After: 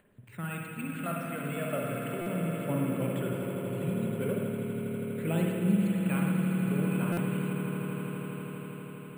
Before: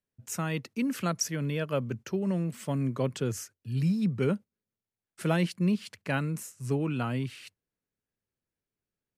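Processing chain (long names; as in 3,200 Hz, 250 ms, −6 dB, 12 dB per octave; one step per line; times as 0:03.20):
Butterworth low-pass 3,400 Hz 36 dB per octave
low-shelf EQ 91 Hz −10 dB
upward compression, threshold −45 dBFS
phase shifter 0.36 Hz, delay 2 ms, feedback 55%
on a send: echo that builds up and dies away 81 ms, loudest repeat 8, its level −12 dB
on the sum: spring reverb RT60 1.7 s, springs 49/54 ms, chirp 65 ms, DRR −0.5 dB
bad sample-rate conversion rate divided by 4×, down filtered, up hold
buffer that repeats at 0:02.21/0:07.12, samples 256, times 8
level −7 dB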